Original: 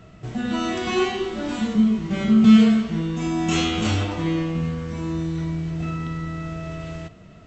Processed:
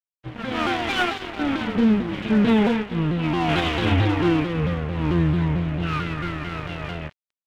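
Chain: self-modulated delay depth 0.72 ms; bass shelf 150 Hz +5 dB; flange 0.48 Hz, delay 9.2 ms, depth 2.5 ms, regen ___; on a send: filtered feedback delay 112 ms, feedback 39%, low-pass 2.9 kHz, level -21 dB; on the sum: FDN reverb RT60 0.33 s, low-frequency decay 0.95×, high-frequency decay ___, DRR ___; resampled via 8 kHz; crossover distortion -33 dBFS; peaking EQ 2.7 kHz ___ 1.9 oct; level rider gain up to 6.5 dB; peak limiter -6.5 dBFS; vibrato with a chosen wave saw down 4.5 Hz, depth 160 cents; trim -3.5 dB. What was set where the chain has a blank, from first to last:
+40%, 0.25×, -1 dB, +7.5 dB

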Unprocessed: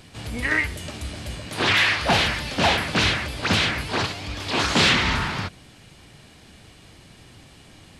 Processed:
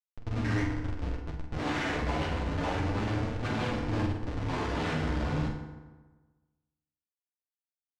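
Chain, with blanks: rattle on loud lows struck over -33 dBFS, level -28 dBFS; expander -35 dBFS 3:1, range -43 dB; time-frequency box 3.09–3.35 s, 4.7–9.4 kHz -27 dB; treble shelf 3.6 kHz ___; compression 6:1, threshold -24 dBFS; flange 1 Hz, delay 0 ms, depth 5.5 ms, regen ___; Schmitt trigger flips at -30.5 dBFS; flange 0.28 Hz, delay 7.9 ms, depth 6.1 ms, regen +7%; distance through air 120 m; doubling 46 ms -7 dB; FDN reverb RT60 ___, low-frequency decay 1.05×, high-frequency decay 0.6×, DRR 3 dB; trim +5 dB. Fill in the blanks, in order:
-4 dB, +62%, 1.3 s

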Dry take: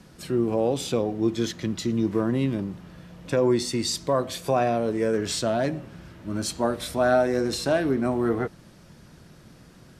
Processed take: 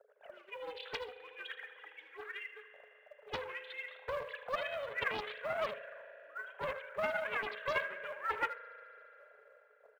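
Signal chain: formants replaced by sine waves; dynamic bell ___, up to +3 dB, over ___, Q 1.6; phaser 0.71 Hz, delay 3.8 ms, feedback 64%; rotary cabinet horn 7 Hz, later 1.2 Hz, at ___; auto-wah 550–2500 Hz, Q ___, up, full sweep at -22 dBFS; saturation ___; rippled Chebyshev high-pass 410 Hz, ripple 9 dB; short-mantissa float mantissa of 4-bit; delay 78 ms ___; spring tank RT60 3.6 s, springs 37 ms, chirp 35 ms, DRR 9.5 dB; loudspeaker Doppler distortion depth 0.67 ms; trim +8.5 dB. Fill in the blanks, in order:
630 Hz, -35 dBFS, 1.87 s, 2.5, -31.5 dBFS, -11 dB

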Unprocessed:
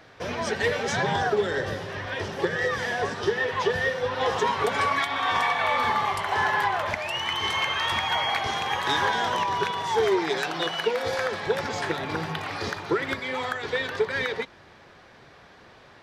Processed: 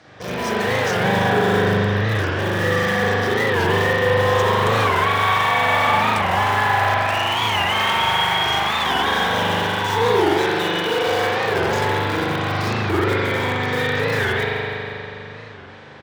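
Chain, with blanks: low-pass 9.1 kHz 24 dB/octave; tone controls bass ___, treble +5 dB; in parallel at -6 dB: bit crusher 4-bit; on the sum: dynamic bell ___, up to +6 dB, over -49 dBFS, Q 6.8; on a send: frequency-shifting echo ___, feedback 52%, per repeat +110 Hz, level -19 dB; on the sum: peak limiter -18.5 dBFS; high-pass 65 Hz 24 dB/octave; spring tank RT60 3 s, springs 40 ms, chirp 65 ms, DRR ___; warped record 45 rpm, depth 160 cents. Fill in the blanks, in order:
+4 dB, 190 Hz, 163 ms, -8.5 dB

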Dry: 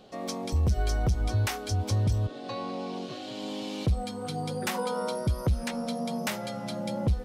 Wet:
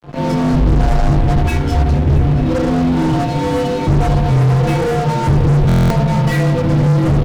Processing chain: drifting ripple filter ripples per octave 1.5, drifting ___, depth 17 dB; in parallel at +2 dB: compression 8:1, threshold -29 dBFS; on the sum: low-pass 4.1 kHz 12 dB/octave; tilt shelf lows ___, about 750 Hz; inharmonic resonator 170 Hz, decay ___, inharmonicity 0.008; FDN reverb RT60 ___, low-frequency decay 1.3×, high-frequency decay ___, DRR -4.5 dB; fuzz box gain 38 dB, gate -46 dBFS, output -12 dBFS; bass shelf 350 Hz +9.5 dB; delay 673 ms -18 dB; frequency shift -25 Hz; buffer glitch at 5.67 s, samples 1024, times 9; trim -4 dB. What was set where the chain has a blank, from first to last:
-2.2 Hz, +8.5 dB, 0.52 s, 1.2 s, 0.3×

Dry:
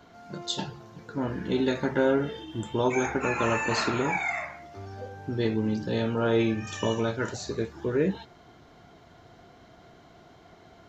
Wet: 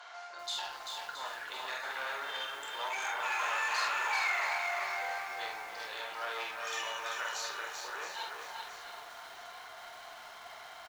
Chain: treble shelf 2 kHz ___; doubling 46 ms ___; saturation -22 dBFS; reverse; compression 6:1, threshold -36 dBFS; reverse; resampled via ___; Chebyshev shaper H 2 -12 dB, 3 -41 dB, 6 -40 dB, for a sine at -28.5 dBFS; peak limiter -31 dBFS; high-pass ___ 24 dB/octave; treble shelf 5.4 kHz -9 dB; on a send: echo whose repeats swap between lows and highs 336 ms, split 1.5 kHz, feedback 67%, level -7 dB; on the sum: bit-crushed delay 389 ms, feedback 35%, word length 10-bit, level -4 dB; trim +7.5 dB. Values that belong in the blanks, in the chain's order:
+4 dB, -5 dB, 22.05 kHz, 800 Hz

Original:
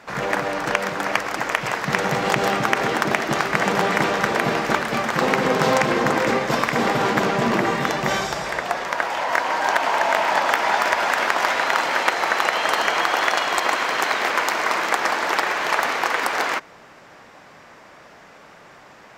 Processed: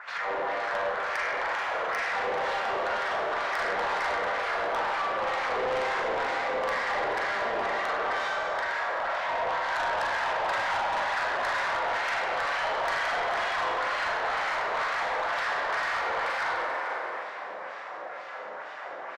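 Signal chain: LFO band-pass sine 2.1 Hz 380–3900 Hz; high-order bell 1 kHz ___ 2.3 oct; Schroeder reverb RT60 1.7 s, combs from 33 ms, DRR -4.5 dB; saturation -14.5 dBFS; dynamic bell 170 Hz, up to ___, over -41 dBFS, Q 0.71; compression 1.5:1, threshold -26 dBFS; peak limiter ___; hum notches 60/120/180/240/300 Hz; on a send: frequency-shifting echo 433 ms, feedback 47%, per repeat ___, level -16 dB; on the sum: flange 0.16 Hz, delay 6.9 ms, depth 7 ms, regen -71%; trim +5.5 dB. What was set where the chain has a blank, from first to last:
+8.5 dB, -3 dB, -25.5 dBFS, +61 Hz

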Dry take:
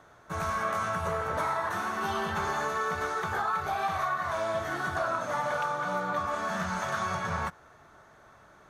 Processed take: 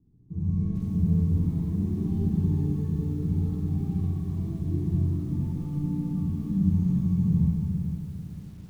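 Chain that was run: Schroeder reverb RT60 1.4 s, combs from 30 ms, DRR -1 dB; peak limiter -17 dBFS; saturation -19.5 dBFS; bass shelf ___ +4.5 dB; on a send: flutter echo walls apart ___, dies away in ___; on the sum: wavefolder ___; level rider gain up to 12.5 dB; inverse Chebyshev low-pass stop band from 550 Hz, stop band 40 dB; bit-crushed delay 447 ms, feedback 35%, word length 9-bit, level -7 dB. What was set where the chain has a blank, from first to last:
63 Hz, 11.5 m, 0.83 s, -20 dBFS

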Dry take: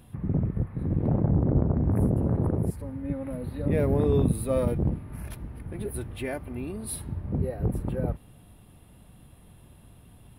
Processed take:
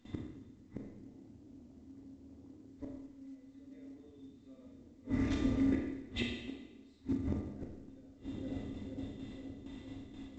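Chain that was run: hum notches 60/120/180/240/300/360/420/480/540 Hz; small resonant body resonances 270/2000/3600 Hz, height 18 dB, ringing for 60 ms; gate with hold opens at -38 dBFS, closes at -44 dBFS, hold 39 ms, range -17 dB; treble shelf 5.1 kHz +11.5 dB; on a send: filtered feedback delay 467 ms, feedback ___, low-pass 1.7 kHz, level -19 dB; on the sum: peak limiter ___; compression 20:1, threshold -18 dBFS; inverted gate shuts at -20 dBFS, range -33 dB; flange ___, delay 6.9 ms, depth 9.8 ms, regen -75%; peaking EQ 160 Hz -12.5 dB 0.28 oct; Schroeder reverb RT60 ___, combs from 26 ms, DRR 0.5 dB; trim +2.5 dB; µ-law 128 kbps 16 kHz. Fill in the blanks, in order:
66%, -8 dBFS, 2 Hz, 0.99 s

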